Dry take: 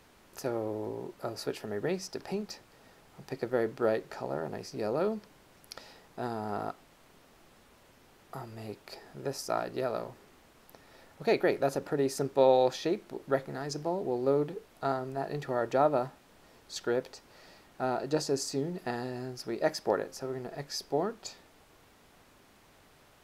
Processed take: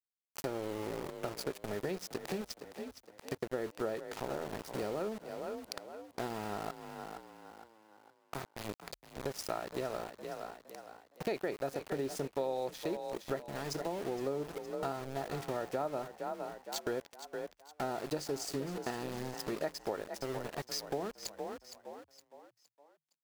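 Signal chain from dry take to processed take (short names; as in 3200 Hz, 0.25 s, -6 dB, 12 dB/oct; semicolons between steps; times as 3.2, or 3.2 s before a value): sample gate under -37.5 dBFS; frequency-shifting echo 0.464 s, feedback 39%, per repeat +37 Hz, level -14 dB; compressor 4:1, threshold -39 dBFS, peak gain reduction 18 dB; gain +4 dB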